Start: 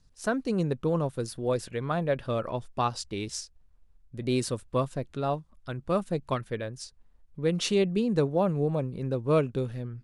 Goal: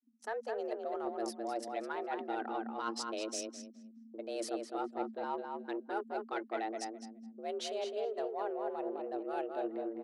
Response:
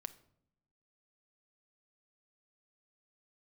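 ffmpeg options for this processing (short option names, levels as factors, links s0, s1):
-filter_complex "[0:a]anlmdn=0.398,agate=range=0.0224:threshold=0.00224:ratio=3:detection=peak,highshelf=f=9700:g=-10,areverse,acompressor=threshold=0.0224:ratio=16,areverse,flanger=delay=0.3:depth=3.4:regen=68:speed=0.87:shape=triangular,afreqshift=220,asplit=2[s0][s1];[s1]asoftclip=type=tanh:threshold=0.0141,volume=0.335[s2];[s0][s2]amix=inputs=2:normalize=0,asplit=2[s3][s4];[s4]adelay=209,lowpass=f=3200:p=1,volume=0.631,asplit=2[s5][s6];[s6]adelay=209,lowpass=f=3200:p=1,volume=0.21,asplit=2[s7][s8];[s8]adelay=209,lowpass=f=3200:p=1,volume=0.21[s9];[s3][s5][s7][s9]amix=inputs=4:normalize=0,volume=1.12"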